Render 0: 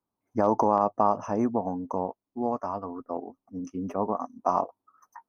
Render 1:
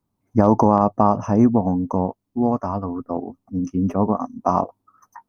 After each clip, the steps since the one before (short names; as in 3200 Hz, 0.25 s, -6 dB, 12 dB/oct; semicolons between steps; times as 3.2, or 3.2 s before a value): tone controls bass +13 dB, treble +1 dB; gain +5 dB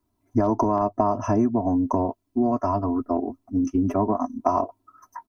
comb 3 ms, depth 99%; compressor 5:1, threshold -18 dBFS, peak gain reduction 10.5 dB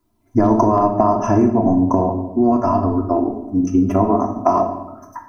shoebox room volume 380 m³, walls mixed, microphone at 0.79 m; gain +5.5 dB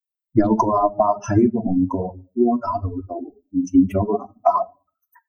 per-bin expansion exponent 3; gain +4 dB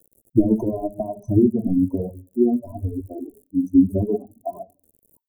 crackle 95/s -33 dBFS; inverse Chebyshev band-stop 1300–4100 Hz, stop band 60 dB